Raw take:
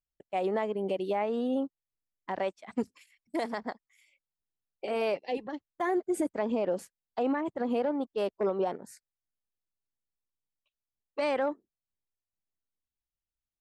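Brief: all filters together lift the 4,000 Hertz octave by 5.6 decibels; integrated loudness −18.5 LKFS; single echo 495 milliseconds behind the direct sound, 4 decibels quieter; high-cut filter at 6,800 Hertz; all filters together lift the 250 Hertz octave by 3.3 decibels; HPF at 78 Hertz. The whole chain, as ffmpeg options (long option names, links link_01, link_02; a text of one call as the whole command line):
ffmpeg -i in.wav -af "highpass=78,lowpass=6800,equalizer=frequency=250:width_type=o:gain=4,equalizer=frequency=4000:width_type=o:gain=8,aecho=1:1:495:0.631,volume=11.5dB" out.wav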